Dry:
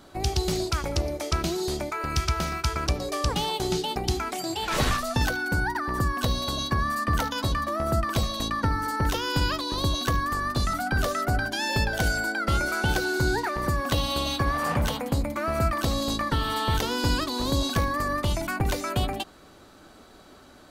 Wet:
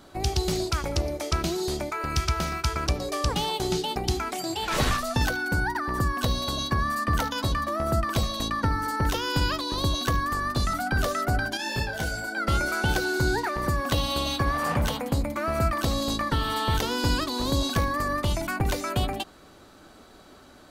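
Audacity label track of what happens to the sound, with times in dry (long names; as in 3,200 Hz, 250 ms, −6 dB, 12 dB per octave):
11.570000	12.370000	micro pitch shift up and down each way 28 cents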